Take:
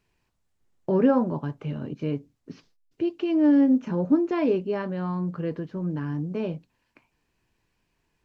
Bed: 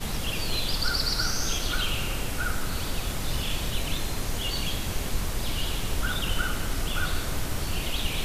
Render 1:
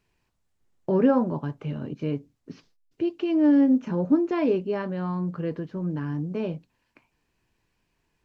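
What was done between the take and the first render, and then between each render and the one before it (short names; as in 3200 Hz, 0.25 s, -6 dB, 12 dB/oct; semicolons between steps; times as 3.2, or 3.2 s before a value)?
nothing audible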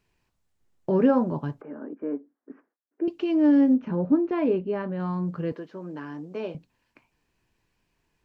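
1.61–3.08 elliptic band-pass 260–1700 Hz; 3.74–5 air absorption 260 m; 5.52–6.55 HPF 350 Hz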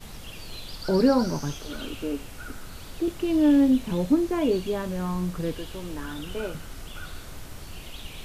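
add bed -11 dB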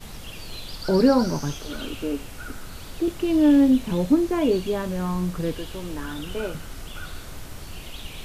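gain +2.5 dB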